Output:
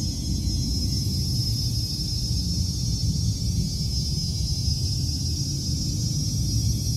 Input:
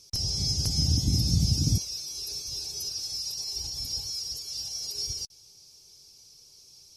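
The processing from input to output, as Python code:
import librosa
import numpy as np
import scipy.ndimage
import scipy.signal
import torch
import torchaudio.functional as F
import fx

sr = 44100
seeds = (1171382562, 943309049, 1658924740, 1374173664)

y = 10.0 ** (-14.5 / 20.0) * np.tanh(x / 10.0 ** (-14.5 / 20.0))
y = fx.paulstretch(y, sr, seeds[0], factor=9.9, window_s=0.25, from_s=1.05)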